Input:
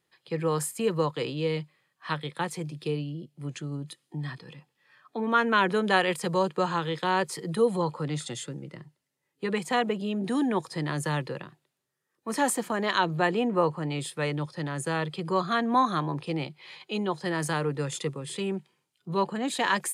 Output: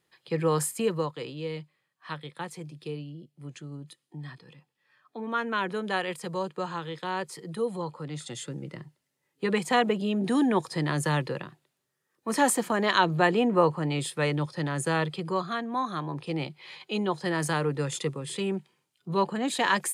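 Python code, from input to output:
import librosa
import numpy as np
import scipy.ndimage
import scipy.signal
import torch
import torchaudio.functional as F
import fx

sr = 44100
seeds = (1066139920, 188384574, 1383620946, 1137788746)

y = fx.gain(x, sr, db=fx.line((0.75, 2.0), (1.17, -6.0), (8.1, -6.0), (8.64, 2.5), (15.02, 2.5), (15.72, -7.5), (16.48, 1.0)))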